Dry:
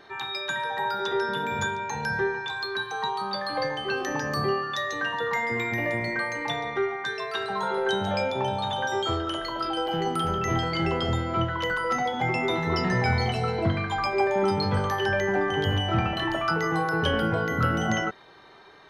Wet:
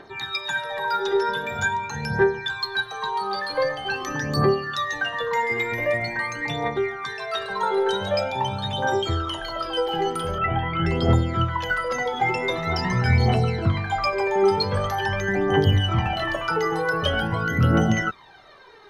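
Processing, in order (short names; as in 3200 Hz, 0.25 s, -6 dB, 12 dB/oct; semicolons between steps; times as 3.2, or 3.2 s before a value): phaser 0.45 Hz, delay 2.5 ms, feedback 66%; 10.38–10.86 steep low-pass 3100 Hz 48 dB/oct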